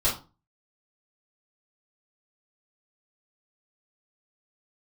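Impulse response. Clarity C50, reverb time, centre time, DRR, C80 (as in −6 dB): 8.0 dB, 0.30 s, 28 ms, −9.5 dB, 14.5 dB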